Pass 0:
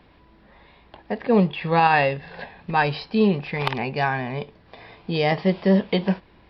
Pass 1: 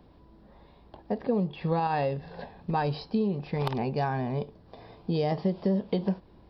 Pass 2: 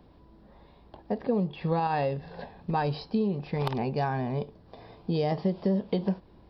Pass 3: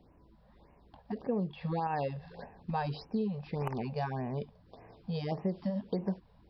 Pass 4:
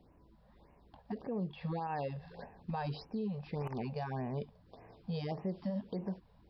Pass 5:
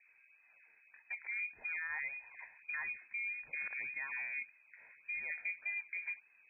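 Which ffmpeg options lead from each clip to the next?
-af "equalizer=f=2200:t=o:w=1.7:g=-15,acompressor=threshold=0.0708:ratio=10"
-af anull
-af "afftfilt=real='re*(1-between(b*sr/1024,280*pow(4200/280,0.5+0.5*sin(2*PI*1.7*pts/sr))/1.41,280*pow(4200/280,0.5+0.5*sin(2*PI*1.7*pts/sr))*1.41))':imag='im*(1-between(b*sr/1024,280*pow(4200/280,0.5+0.5*sin(2*PI*1.7*pts/sr))/1.41,280*pow(4200/280,0.5+0.5*sin(2*PI*1.7*pts/sr))*1.41))':win_size=1024:overlap=0.75,volume=0.531"
-af "alimiter=level_in=1.5:limit=0.0631:level=0:latency=1:release=54,volume=0.668,volume=0.794"
-af "lowpass=f=2200:t=q:w=0.5098,lowpass=f=2200:t=q:w=0.6013,lowpass=f=2200:t=q:w=0.9,lowpass=f=2200:t=q:w=2.563,afreqshift=-2600,aemphasis=mode=reproduction:type=50fm,volume=0.794"

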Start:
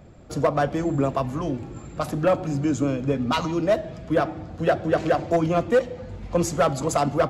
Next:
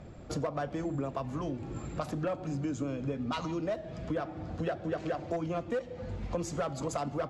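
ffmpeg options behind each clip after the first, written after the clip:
-af "lowpass=8200,acompressor=threshold=0.0224:ratio=4"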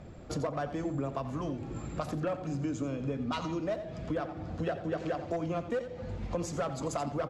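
-af "aecho=1:1:87:0.237"

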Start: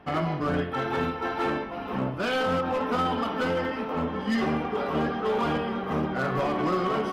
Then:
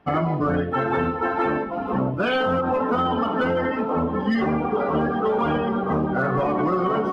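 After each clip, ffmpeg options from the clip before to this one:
-af "afftdn=nr=14:nf=-33,acompressor=threshold=0.0447:ratio=6,volume=2.66"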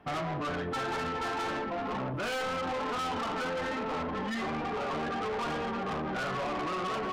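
-filter_complex "[0:a]acrossover=split=610[s0][s1];[s0]alimiter=level_in=1.19:limit=0.0631:level=0:latency=1,volume=0.841[s2];[s2][s1]amix=inputs=2:normalize=0,asoftclip=type=tanh:threshold=0.0282"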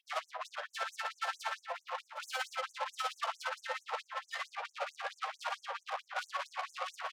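-filter_complex "[0:a]tremolo=f=17:d=0.63,asplit=2[s0][s1];[s1]aecho=0:1:119|763:0.211|0.158[s2];[s0][s2]amix=inputs=2:normalize=0,afftfilt=real='re*gte(b*sr/1024,470*pow(6100/470,0.5+0.5*sin(2*PI*4.5*pts/sr)))':imag='im*gte(b*sr/1024,470*pow(6100/470,0.5+0.5*sin(2*PI*4.5*pts/sr)))':win_size=1024:overlap=0.75,volume=1.19"

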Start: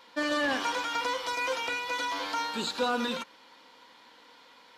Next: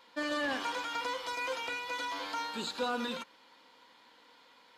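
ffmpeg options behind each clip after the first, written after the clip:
-af "bandreject=f=5700:w=17,volume=0.562"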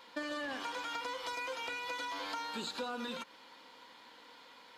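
-af "acompressor=threshold=0.00891:ratio=6,volume=1.58"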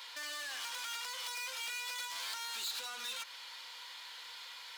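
-filter_complex "[0:a]asplit=2[s0][s1];[s1]highpass=f=720:p=1,volume=15.8,asoftclip=type=tanh:threshold=0.0473[s2];[s0][s2]amix=inputs=2:normalize=0,lowpass=f=3600:p=1,volume=0.501,aderivative,volume=1.41"

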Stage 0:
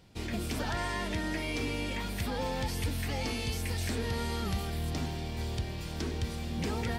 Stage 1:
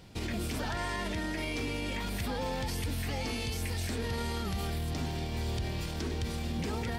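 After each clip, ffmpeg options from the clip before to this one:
-af "alimiter=level_in=2.51:limit=0.0631:level=0:latency=1:release=59,volume=0.398,volume=2"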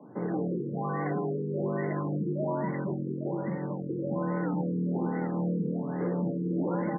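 -filter_complex "[0:a]afreqshift=100,acrossover=split=160|1600[s0][s1][s2];[s0]adelay=40[s3];[s2]adelay=780[s4];[s3][s1][s4]amix=inputs=3:normalize=0,afftfilt=real='re*lt(b*sr/1024,500*pow(2200/500,0.5+0.5*sin(2*PI*1.2*pts/sr)))':imag='im*lt(b*sr/1024,500*pow(2200/500,0.5+0.5*sin(2*PI*1.2*pts/sr)))':win_size=1024:overlap=0.75,volume=1.88"

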